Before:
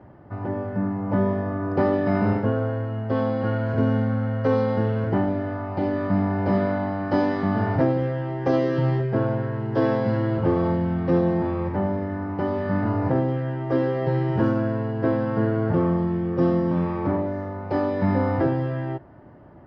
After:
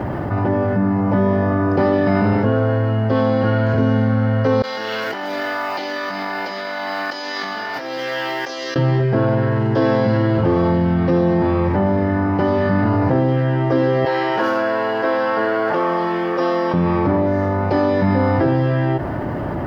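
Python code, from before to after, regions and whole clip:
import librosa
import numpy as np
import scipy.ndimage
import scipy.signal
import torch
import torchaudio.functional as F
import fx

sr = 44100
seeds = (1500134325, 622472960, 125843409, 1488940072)

y = fx.chain(x, sr, fx.differentiator(),
    fx.over_compress(threshold_db=-51.0, ratio=-0.5),
    fx.highpass(hz=210.0, slope=12), at=(4.62, 8.76))
y = fx.chain(y, sr, fx.highpass(hz=630.0, slope=12),
    fx.quant_float(bits=8), at=(14.05, 16.74))
y = fx.high_shelf(y, sr, hz=2800.0, db=7.5)
y = fx.env_flatten(y, sr, amount_pct=70)
y = F.gain(torch.from_numpy(y), 2.5).numpy()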